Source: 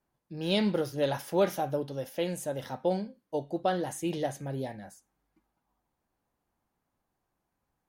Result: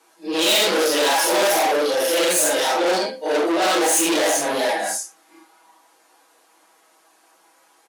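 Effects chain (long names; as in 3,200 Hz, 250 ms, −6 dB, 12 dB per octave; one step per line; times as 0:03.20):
random phases in long frames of 200 ms
Butterworth low-pass 12,000 Hz 36 dB per octave
comb filter 6.2 ms, depth 62%
mid-hump overdrive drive 33 dB, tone 5,000 Hz, clips at −12 dBFS
high-pass filter 280 Hz 24 dB per octave
high-shelf EQ 4,900 Hz +11 dB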